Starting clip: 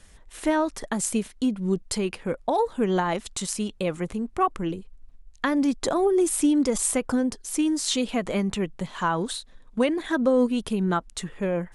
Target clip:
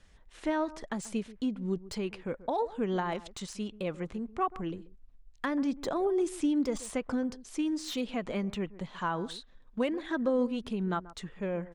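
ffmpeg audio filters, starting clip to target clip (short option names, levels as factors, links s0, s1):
-filter_complex "[0:a]lowpass=5400,acrossover=split=2000[s0][s1];[s0]aecho=1:1:135:0.133[s2];[s1]volume=28.2,asoftclip=hard,volume=0.0355[s3];[s2][s3]amix=inputs=2:normalize=0,volume=0.422"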